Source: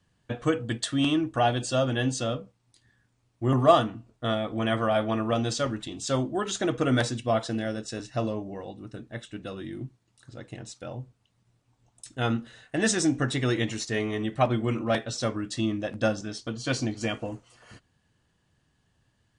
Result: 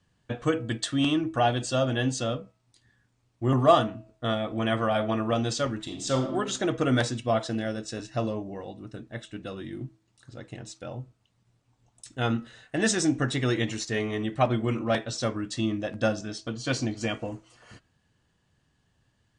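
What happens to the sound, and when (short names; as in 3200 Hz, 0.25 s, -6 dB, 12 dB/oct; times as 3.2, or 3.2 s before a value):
5.82–6.33 reverb throw, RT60 0.9 s, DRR 5 dB
whole clip: LPF 9400 Hz 24 dB/oct; de-hum 323.4 Hz, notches 8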